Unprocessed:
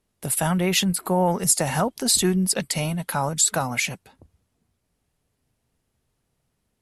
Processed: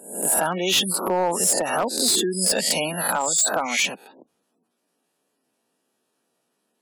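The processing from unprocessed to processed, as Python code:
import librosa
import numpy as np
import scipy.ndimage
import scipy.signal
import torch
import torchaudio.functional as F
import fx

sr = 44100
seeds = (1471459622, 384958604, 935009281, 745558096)

y = fx.spec_swells(x, sr, rise_s=0.58)
y = scipy.signal.sosfilt(scipy.signal.butter(4, 240.0, 'highpass', fs=sr, output='sos'), y)
y = fx.notch(y, sr, hz=2100.0, q=9.1)
y = fx.spec_gate(y, sr, threshold_db=-20, keep='strong')
y = fx.dynamic_eq(y, sr, hz=3400.0, q=3.6, threshold_db=-39.0, ratio=4.0, max_db=5)
y = fx.rider(y, sr, range_db=4, speed_s=0.5)
y = np.clip(y, -10.0 ** (-14.5 / 20.0), 10.0 ** (-14.5 / 20.0))
y = fx.band_squash(y, sr, depth_pct=40, at=(1.4, 3.57))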